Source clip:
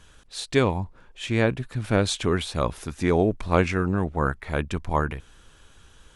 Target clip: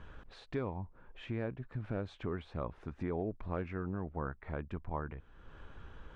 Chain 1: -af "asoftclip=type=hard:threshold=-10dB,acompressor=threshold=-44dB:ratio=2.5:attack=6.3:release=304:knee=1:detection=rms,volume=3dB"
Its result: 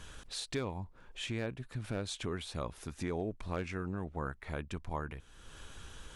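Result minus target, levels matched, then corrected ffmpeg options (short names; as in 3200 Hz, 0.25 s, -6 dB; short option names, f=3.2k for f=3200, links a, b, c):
2000 Hz band +3.5 dB
-af "asoftclip=type=hard:threshold=-10dB,acompressor=threshold=-44dB:ratio=2.5:attack=6.3:release=304:knee=1:detection=rms,lowpass=1.6k,volume=3dB"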